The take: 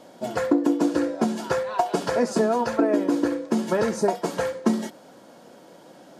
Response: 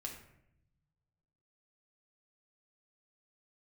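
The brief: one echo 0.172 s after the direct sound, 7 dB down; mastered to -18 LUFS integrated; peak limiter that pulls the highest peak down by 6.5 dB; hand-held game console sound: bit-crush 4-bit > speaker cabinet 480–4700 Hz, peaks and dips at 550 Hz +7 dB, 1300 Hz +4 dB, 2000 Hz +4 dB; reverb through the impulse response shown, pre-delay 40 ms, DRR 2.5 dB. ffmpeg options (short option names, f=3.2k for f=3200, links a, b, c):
-filter_complex "[0:a]alimiter=limit=-14.5dB:level=0:latency=1,aecho=1:1:172:0.447,asplit=2[a][b];[1:a]atrim=start_sample=2205,adelay=40[c];[b][c]afir=irnorm=-1:irlink=0,volume=-0.5dB[d];[a][d]amix=inputs=2:normalize=0,acrusher=bits=3:mix=0:aa=0.000001,highpass=480,equalizer=f=550:t=q:w=4:g=7,equalizer=f=1.3k:t=q:w=4:g=4,equalizer=f=2k:t=q:w=4:g=4,lowpass=f=4.7k:w=0.5412,lowpass=f=4.7k:w=1.3066,volume=4.5dB"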